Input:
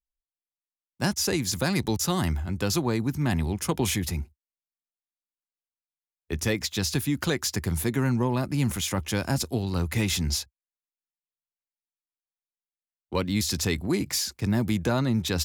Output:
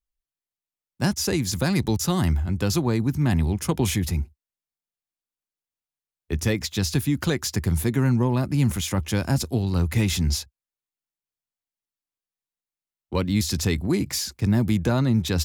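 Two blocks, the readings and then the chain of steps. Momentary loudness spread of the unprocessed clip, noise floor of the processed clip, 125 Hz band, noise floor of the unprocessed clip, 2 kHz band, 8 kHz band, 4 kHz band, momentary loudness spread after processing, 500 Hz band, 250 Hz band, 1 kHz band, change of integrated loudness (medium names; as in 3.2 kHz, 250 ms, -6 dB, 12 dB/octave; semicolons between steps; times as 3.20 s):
4 LU, under -85 dBFS, +5.0 dB, under -85 dBFS, 0.0 dB, 0.0 dB, 0.0 dB, 5 LU, +1.5 dB, +3.5 dB, +0.5 dB, +3.0 dB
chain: bass shelf 250 Hz +6.5 dB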